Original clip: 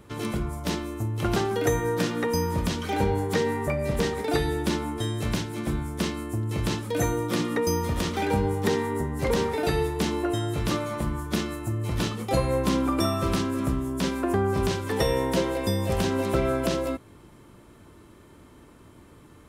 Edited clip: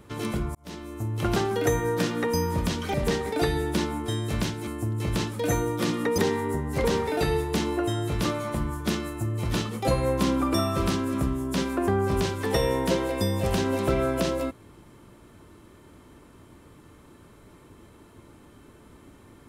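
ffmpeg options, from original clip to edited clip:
ffmpeg -i in.wav -filter_complex "[0:a]asplit=5[link_01][link_02][link_03][link_04][link_05];[link_01]atrim=end=0.55,asetpts=PTS-STARTPTS,afade=type=out:start_time=0.546:duration=0.004:curve=hsin[link_06];[link_02]atrim=start=0.55:end=2.942,asetpts=PTS-STARTPTS,afade=type=in:duration=0.59[link_07];[link_03]atrim=start=3.858:end=5.592[link_08];[link_04]atrim=start=6.178:end=7.692[link_09];[link_05]atrim=start=8.638[link_10];[link_06][link_07]concat=n=2:v=0:a=1[link_11];[link_11][link_08]acrossfade=duration=0.004:curve1=hsin:curve2=hsin[link_12];[link_12][link_09]acrossfade=duration=0.004:curve1=hsin:curve2=hsin[link_13];[link_13][link_10]acrossfade=duration=0.004:curve1=hsin:curve2=hsin" out.wav

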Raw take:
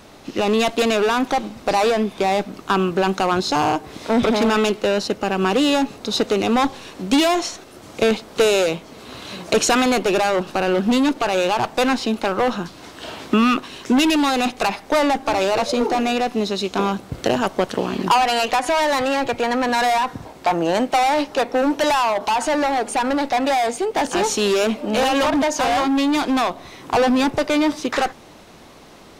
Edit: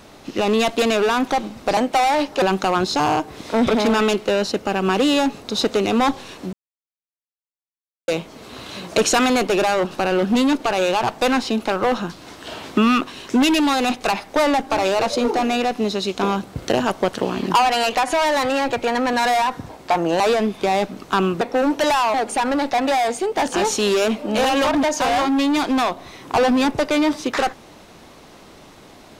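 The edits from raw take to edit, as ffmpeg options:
ffmpeg -i in.wav -filter_complex "[0:a]asplit=8[link_01][link_02][link_03][link_04][link_05][link_06][link_07][link_08];[link_01]atrim=end=1.772[link_09];[link_02]atrim=start=20.758:end=21.412[link_10];[link_03]atrim=start=2.978:end=7.09,asetpts=PTS-STARTPTS,afade=type=out:start_time=4.108:duration=0.004:curve=hsin[link_11];[link_04]atrim=start=7.09:end=8.64,asetpts=PTS-STARTPTS,volume=0[link_12];[link_05]atrim=start=8.64:end=20.762,asetpts=PTS-STARTPTS,afade=type=in:duration=0.004:curve=hsin[link_13];[link_06]atrim=start=1.768:end=2.982[link_14];[link_07]atrim=start=21.408:end=22.142[link_15];[link_08]atrim=start=22.728[link_16];[link_09][link_10]acrossfade=duration=0.004:curve1=hsin:curve2=hsin[link_17];[link_11][link_12][link_13]concat=n=3:v=0:a=1[link_18];[link_17][link_18]acrossfade=duration=0.004:curve1=hsin:curve2=hsin[link_19];[link_19][link_14]acrossfade=duration=0.004:curve1=hsin:curve2=hsin[link_20];[link_20][link_15]acrossfade=duration=0.004:curve1=hsin:curve2=hsin[link_21];[link_21][link_16]acrossfade=duration=0.004:curve1=hsin:curve2=hsin" out.wav

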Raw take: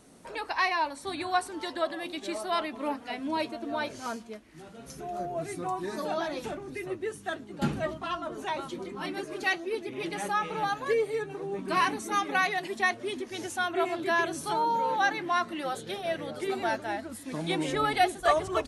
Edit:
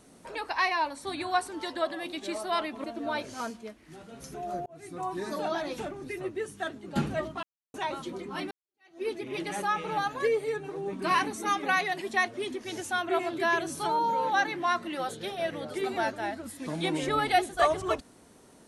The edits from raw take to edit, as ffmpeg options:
ffmpeg -i in.wav -filter_complex "[0:a]asplit=6[link_01][link_02][link_03][link_04][link_05][link_06];[link_01]atrim=end=2.842[link_07];[link_02]atrim=start=3.498:end=5.32,asetpts=PTS-STARTPTS,afade=type=out:start_time=1.818:duration=0.004:curve=hsin[link_08];[link_03]atrim=start=5.32:end=8.09,asetpts=PTS-STARTPTS,afade=type=in:duration=0.48,afade=type=out:start_time=2.766:duration=0.004:curve=hsin[link_09];[link_04]atrim=start=8.09:end=8.4,asetpts=PTS-STARTPTS,volume=0[link_10];[link_05]atrim=start=8.4:end=9.17,asetpts=PTS-STARTPTS,afade=type=in:duration=0.004:curve=hsin,afade=type=out:start_time=0.766:duration=0.004:curve=hsin[link_11];[link_06]atrim=start=9.17,asetpts=PTS-STARTPTS,afade=type=in:duration=0.51:curve=exp[link_12];[link_08][link_09][link_10][link_11][link_12]concat=n=5:v=0:a=1[link_13];[link_07][link_13]acrossfade=duration=0.004:curve1=hsin:curve2=hsin" out.wav

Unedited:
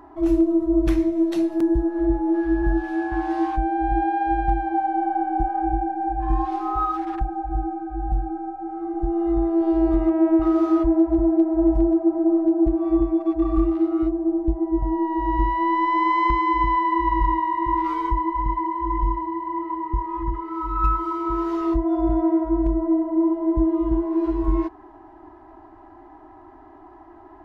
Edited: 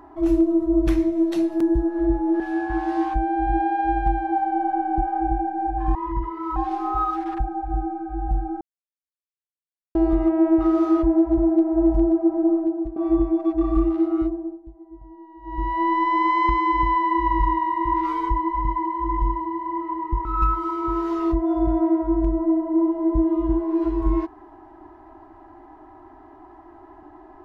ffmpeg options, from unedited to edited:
ffmpeg -i in.wav -filter_complex "[0:a]asplit=10[link_01][link_02][link_03][link_04][link_05][link_06][link_07][link_08][link_09][link_10];[link_01]atrim=end=2.402[link_11];[link_02]atrim=start=2.818:end=6.372[link_12];[link_03]atrim=start=20.058:end=20.672[link_13];[link_04]atrim=start=6.368:end=8.42,asetpts=PTS-STARTPTS,afade=type=out:start_time=2.048:duration=0.004:curve=hsin[link_14];[link_05]atrim=start=8.42:end=9.76,asetpts=PTS-STARTPTS,volume=0[link_15];[link_06]atrim=start=9.76:end=12.77,asetpts=PTS-STARTPTS,afade=type=in:duration=0.004:curve=hsin,afade=type=out:start_time=2.53:duration=0.48:silence=0.149624[link_16];[link_07]atrim=start=12.77:end=14.4,asetpts=PTS-STARTPTS,afade=type=in:duration=0.004:curve=hsin:silence=0.149624,afade=type=out:start_time=1.24:duration=0.39:silence=0.0944061[link_17];[link_08]atrim=start=14.4:end=15.23,asetpts=PTS-STARTPTS,volume=-20.5dB[link_18];[link_09]atrim=start=15.23:end=20.062,asetpts=PTS-STARTPTS,afade=type=in:duration=0.39:silence=0.0944061[link_19];[link_10]atrim=start=20.668[link_20];[link_11][link_12]acrossfade=duration=0.004:curve1=hsin:curve2=hsin[link_21];[link_21][link_13]acrossfade=duration=0.004:curve1=hsin:curve2=hsin[link_22];[link_14][link_15][link_16][link_17][link_18][link_19]concat=n=6:v=0:a=1[link_23];[link_22][link_23]acrossfade=duration=0.004:curve1=hsin:curve2=hsin[link_24];[link_24][link_20]acrossfade=duration=0.004:curve1=hsin:curve2=hsin" out.wav

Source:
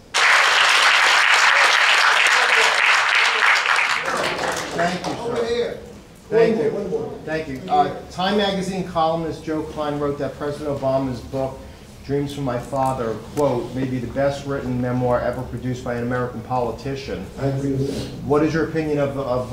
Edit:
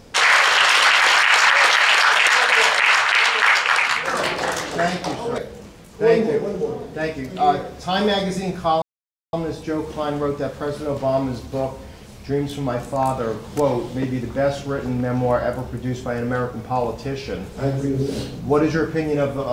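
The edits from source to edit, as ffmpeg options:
ffmpeg -i in.wav -filter_complex "[0:a]asplit=3[link_01][link_02][link_03];[link_01]atrim=end=5.382[link_04];[link_02]atrim=start=5.688:end=9.13,asetpts=PTS-STARTPTS,afade=type=out:start_time=3.438:duration=0.004:curve=hsin,apad=pad_dur=0.51[link_05];[link_03]atrim=start=9.13,asetpts=PTS-STARTPTS,afade=type=in:duration=0.004:curve=hsin[link_06];[link_05][link_06]concat=n=2:v=0:a=1[link_07];[link_04][link_07]acrossfade=duration=0.004:curve1=hsin:curve2=hsin" out.wav

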